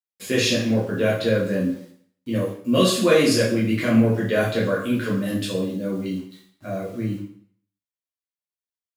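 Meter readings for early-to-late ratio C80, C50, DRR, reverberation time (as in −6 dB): 8.5 dB, 4.5 dB, −6.5 dB, 0.60 s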